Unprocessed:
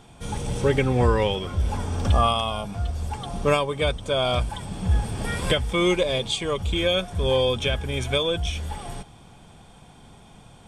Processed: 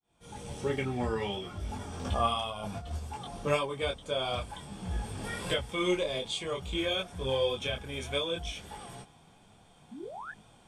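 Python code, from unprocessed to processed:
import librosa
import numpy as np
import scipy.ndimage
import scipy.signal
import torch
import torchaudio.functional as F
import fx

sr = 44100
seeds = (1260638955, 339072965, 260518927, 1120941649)

y = fx.fade_in_head(x, sr, length_s=0.59)
y = fx.low_shelf(y, sr, hz=120.0, db=-8.0)
y = fx.notch_comb(y, sr, f0_hz=510.0, at=(0.53, 1.9))
y = fx.over_compress(y, sr, threshold_db=-33.0, ratio=-0.5, at=(2.5, 2.96), fade=0.02)
y = fx.spec_paint(y, sr, seeds[0], shape='rise', start_s=9.91, length_s=0.41, low_hz=210.0, high_hz=1800.0, level_db=-34.0)
y = fx.detune_double(y, sr, cents=20)
y = F.gain(torch.from_numpy(y), -4.0).numpy()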